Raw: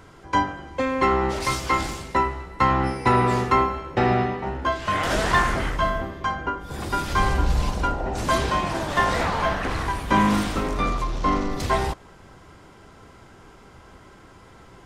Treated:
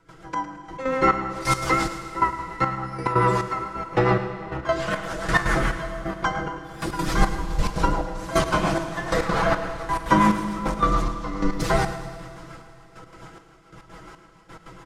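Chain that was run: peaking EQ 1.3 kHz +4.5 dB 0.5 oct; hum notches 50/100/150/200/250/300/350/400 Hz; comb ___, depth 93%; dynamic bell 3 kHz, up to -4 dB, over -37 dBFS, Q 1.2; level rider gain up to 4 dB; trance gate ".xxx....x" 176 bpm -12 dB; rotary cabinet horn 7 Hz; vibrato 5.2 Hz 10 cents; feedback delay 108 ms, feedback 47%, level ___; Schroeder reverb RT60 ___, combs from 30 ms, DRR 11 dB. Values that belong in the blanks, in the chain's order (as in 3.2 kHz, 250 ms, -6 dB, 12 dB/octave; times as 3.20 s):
6.1 ms, -14 dB, 2.9 s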